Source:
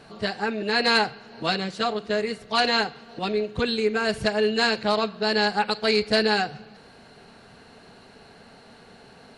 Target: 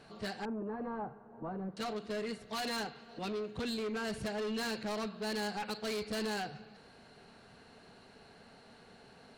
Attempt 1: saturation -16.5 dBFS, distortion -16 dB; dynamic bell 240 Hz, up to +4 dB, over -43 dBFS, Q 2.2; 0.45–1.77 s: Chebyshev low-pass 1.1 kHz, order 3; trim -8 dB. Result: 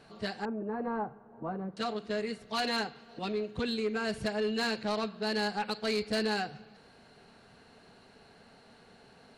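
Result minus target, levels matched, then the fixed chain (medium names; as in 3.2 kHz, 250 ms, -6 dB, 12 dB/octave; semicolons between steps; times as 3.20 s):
saturation: distortion -9 dB
saturation -26.5 dBFS, distortion -7 dB; dynamic bell 240 Hz, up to +4 dB, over -43 dBFS, Q 2.2; 0.45–1.77 s: Chebyshev low-pass 1.1 kHz, order 3; trim -8 dB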